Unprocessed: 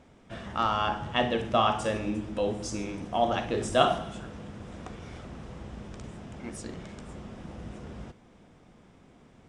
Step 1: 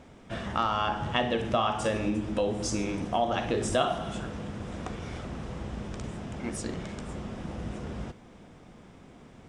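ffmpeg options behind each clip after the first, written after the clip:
ffmpeg -i in.wav -af "acompressor=threshold=-30dB:ratio=3,volume=5dB" out.wav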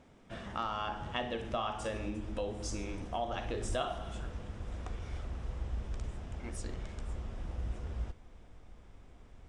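ffmpeg -i in.wav -af "asubboost=boost=10.5:cutoff=54,volume=-8.5dB" out.wav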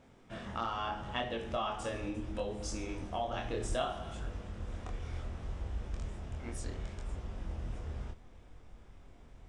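ffmpeg -i in.wav -af "flanger=delay=22.5:depth=3.4:speed=0.7,volume=3dB" out.wav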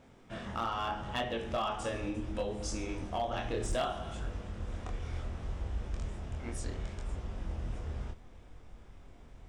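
ffmpeg -i in.wav -af "asoftclip=type=hard:threshold=-28dB,volume=2dB" out.wav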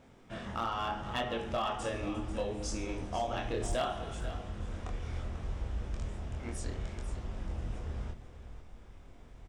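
ffmpeg -i in.wav -af "aecho=1:1:492:0.237" out.wav

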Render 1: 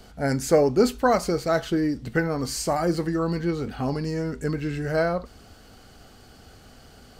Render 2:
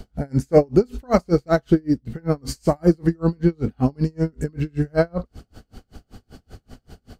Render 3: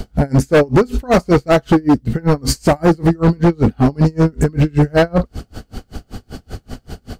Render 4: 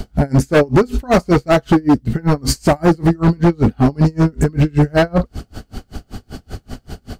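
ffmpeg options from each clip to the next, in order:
ffmpeg -i in.wav -af "lowshelf=frequency=430:gain=11.5,aeval=exprs='val(0)*pow(10,-37*(0.5-0.5*cos(2*PI*5.2*n/s))/20)':channel_layout=same,volume=3dB" out.wav
ffmpeg -i in.wav -filter_complex "[0:a]asplit=2[link_01][link_02];[link_02]alimiter=limit=-11dB:level=0:latency=1:release=56,volume=1dB[link_03];[link_01][link_03]amix=inputs=2:normalize=0,asoftclip=type=hard:threshold=-13.5dB,volume=6.5dB" out.wav
ffmpeg -i in.wav -af "bandreject=frequency=490:width=12" out.wav

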